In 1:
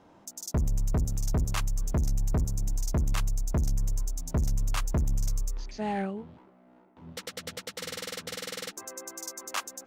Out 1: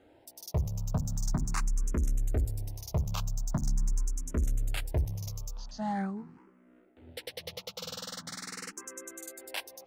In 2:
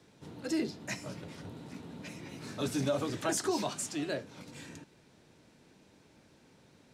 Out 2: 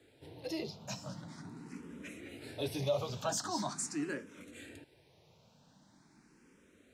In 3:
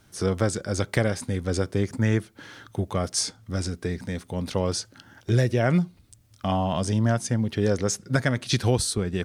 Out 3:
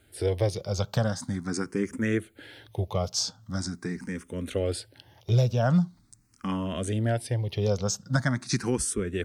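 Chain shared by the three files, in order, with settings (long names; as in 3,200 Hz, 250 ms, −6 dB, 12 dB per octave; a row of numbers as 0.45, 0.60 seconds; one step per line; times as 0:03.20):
frequency shifter mixed with the dry sound +0.43 Hz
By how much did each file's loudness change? −3.0, −3.5, −3.0 LU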